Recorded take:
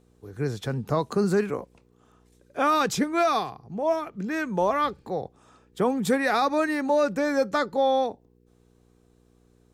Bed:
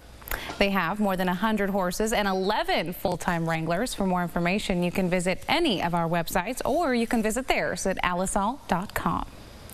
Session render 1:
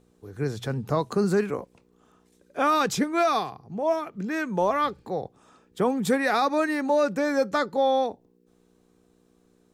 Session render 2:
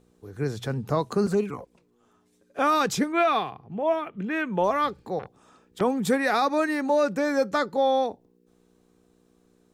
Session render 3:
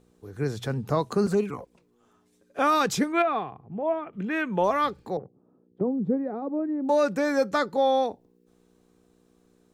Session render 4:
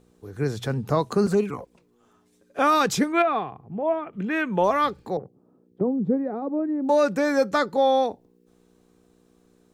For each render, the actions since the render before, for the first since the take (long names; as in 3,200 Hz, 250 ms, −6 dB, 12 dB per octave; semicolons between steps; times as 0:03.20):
hum removal 60 Hz, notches 2
0:01.26–0:02.59: flanger swept by the level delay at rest 10 ms, full sweep at −19 dBFS; 0:03.12–0:04.64: high shelf with overshoot 3,900 Hz −8 dB, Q 3; 0:05.19–0:05.81: saturating transformer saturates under 2,100 Hz
0:03.22–0:04.13: head-to-tape spacing loss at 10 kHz 37 dB; 0:05.17–0:06.89: flat-topped band-pass 230 Hz, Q 0.67
level +2.5 dB